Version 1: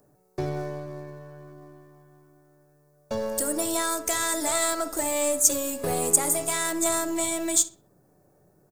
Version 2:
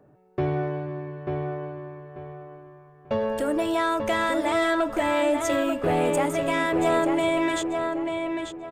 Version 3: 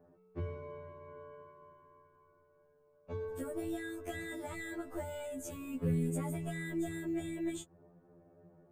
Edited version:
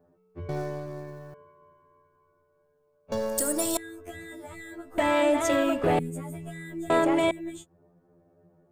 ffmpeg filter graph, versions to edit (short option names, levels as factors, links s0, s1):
-filter_complex "[0:a]asplit=2[s0][s1];[1:a]asplit=2[s2][s3];[2:a]asplit=5[s4][s5][s6][s7][s8];[s4]atrim=end=0.492[s9];[s0]atrim=start=0.488:end=1.342[s10];[s5]atrim=start=1.338:end=3.122[s11];[s1]atrim=start=3.118:end=3.772[s12];[s6]atrim=start=3.768:end=4.982[s13];[s2]atrim=start=4.978:end=5.992[s14];[s7]atrim=start=5.988:end=6.902[s15];[s3]atrim=start=6.898:end=7.312[s16];[s8]atrim=start=7.308[s17];[s9][s10]acrossfade=d=0.004:c1=hsin:c2=hsin[s18];[s18][s11]acrossfade=d=0.004:c1=hsin:c2=hsin[s19];[s19][s12]acrossfade=d=0.004:c1=hsin:c2=hsin[s20];[s20][s13]acrossfade=d=0.004:c1=hsin:c2=hsin[s21];[s21][s14]acrossfade=d=0.004:c1=hsin:c2=hsin[s22];[s22][s15]acrossfade=d=0.004:c1=hsin:c2=hsin[s23];[s23][s16]acrossfade=d=0.004:c1=hsin:c2=hsin[s24];[s24][s17]acrossfade=d=0.004:c1=hsin:c2=hsin"